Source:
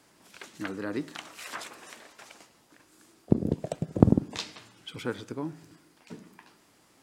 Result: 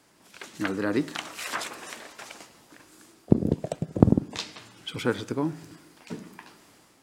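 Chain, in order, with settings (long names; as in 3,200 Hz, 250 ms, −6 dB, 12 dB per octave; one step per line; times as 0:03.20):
automatic gain control gain up to 7 dB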